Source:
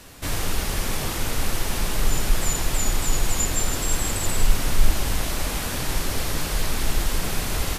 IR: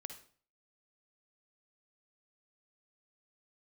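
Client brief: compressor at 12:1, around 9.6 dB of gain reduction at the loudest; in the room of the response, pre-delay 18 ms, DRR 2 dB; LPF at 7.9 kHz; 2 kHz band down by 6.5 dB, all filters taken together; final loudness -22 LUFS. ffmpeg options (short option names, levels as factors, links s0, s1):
-filter_complex "[0:a]lowpass=7900,equalizer=f=2000:t=o:g=-8.5,acompressor=threshold=0.126:ratio=12,asplit=2[s0][s1];[1:a]atrim=start_sample=2205,adelay=18[s2];[s1][s2]afir=irnorm=-1:irlink=0,volume=1.26[s3];[s0][s3]amix=inputs=2:normalize=0,volume=1.88"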